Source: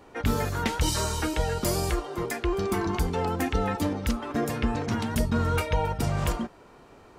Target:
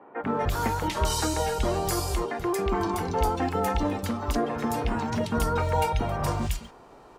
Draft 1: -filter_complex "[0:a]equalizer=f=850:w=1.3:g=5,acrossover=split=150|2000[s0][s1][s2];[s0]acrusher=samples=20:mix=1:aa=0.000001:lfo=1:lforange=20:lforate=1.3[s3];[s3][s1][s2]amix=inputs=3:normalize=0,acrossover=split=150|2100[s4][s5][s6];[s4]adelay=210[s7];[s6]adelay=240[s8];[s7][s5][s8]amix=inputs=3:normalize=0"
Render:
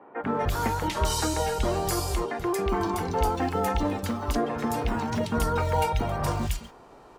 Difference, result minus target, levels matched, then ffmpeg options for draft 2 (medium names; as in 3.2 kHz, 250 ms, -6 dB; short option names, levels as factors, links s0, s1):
decimation with a swept rate: distortion +15 dB
-filter_complex "[0:a]equalizer=f=850:w=1.3:g=5,acrossover=split=150|2000[s0][s1][s2];[s0]acrusher=samples=4:mix=1:aa=0.000001:lfo=1:lforange=4:lforate=1.3[s3];[s3][s1][s2]amix=inputs=3:normalize=0,acrossover=split=150|2100[s4][s5][s6];[s4]adelay=210[s7];[s6]adelay=240[s8];[s7][s5][s8]amix=inputs=3:normalize=0"